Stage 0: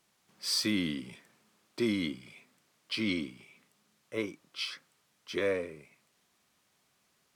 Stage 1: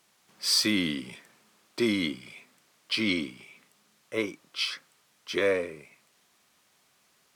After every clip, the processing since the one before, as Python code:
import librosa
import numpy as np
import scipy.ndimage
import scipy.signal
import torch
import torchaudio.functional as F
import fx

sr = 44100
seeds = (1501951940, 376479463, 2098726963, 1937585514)

y = fx.low_shelf(x, sr, hz=290.0, db=-6.0)
y = y * librosa.db_to_amplitude(6.5)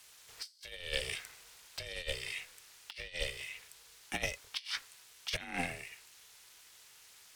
y = fx.tone_stack(x, sr, knobs='5-5-5')
y = y * np.sin(2.0 * np.pi * 260.0 * np.arange(len(y)) / sr)
y = fx.over_compress(y, sr, threshold_db=-50.0, ratio=-0.5)
y = y * librosa.db_to_amplitude(11.0)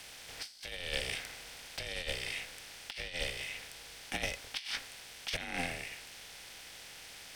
y = fx.bin_compress(x, sr, power=0.6)
y = y * librosa.db_to_amplitude(-2.5)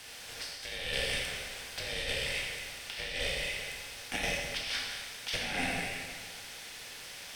y = fx.rev_plate(x, sr, seeds[0], rt60_s=1.7, hf_ratio=0.9, predelay_ms=0, drr_db=-3.0)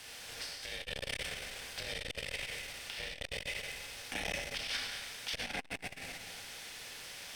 y = fx.transformer_sat(x, sr, knee_hz=930.0)
y = y * librosa.db_to_amplitude(-1.5)